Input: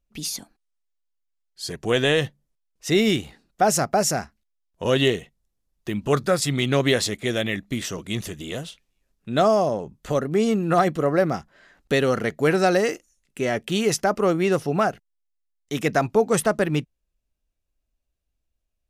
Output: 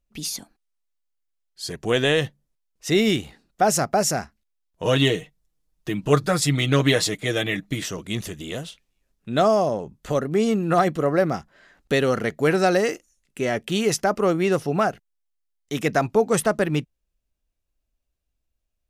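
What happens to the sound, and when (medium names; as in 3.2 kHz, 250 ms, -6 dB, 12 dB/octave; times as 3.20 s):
4.83–7.84 s: comb 6.5 ms, depth 69%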